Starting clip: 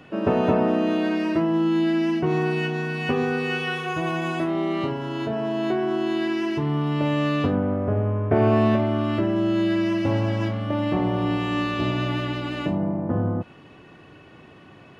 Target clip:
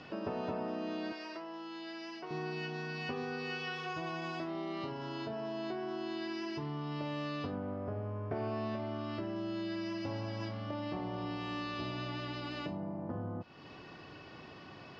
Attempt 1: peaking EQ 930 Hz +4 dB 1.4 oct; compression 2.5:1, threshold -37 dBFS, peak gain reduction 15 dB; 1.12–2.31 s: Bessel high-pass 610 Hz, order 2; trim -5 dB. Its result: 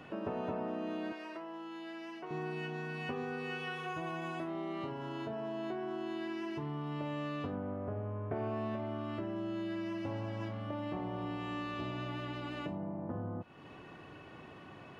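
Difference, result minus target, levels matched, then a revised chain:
4 kHz band -4.5 dB
resonant low-pass 5 kHz, resonance Q 5.7; peaking EQ 930 Hz +4 dB 1.4 oct; compression 2.5:1, threshold -37 dBFS, peak gain reduction 15.5 dB; 1.12–2.31 s: Bessel high-pass 610 Hz, order 2; trim -5 dB

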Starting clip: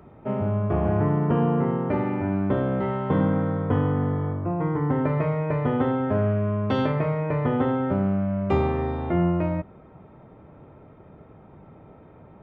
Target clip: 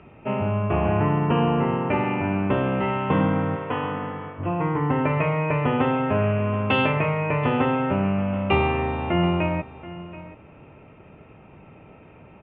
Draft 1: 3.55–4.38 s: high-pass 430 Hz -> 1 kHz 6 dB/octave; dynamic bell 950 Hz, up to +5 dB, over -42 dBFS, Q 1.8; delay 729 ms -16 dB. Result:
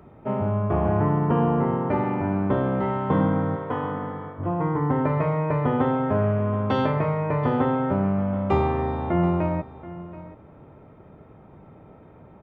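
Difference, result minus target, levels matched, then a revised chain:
2 kHz band -7.0 dB
3.55–4.38 s: high-pass 430 Hz -> 1 kHz 6 dB/octave; dynamic bell 950 Hz, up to +5 dB, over -42 dBFS, Q 1.8; resonant low-pass 2.7 kHz, resonance Q 11; delay 729 ms -16 dB

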